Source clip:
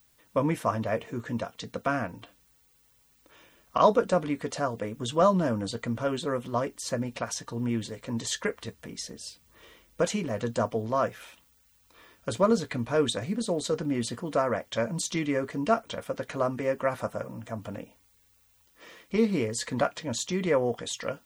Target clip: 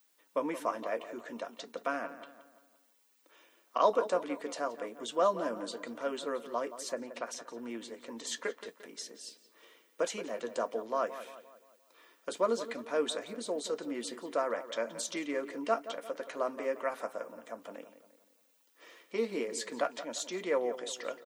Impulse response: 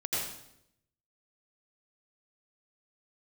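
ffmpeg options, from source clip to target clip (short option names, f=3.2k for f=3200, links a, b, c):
-filter_complex "[0:a]highpass=f=290:w=0.5412,highpass=f=290:w=1.3066,asplit=2[a][b];[b]adelay=174,lowpass=f=2.7k:p=1,volume=-12.5dB,asplit=2[c][d];[d]adelay=174,lowpass=f=2.7k:p=1,volume=0.47,asplit=2[e][f];[f]adelay=174,lowpass=f=2.7k:p=1,volume=0.47,asplit=2[g][h];[h]adelay=174,lowpass=f=2.7k:p=1,volume=0.47,asplit=2[i][j];[j]adelay=174,lowpass=f=2.7k:p=1,volume=0.47[k];[a][c][e][g][i][k]amix=inputs=6:normalize=0,asplit=3[l][m][n];[l]afade=t=out:st=6.92:d=0.02[o];[m]adynamicequalizer=threshold=0.00447:dfrequency=2600:dqfactor=0.7:tfrequency=2600:tqfactor=0.7:attack=5:release=100:ratio=0.375:range=3:mode=cutabove:tftype=highshelf,afade=t=in:st=6.92:d=0.02,afade=t=out:st=8.64:d=0.02[p];[n]afade=t=in:st=8.64:d=0.02[q];[o][p][q]amix=inputs=3:normalize=0,volume=-5.5dB"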